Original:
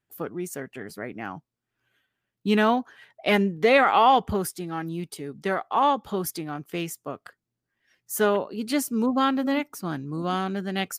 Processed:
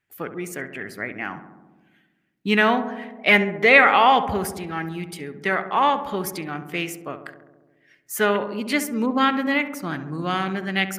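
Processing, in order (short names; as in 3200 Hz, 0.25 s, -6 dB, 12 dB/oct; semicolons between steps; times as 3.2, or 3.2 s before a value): bell 2100 Hz +11.5 dB 1 oct; darkening echo 68 ms, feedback 77%, low-pass 1400 Hz, level -10 dB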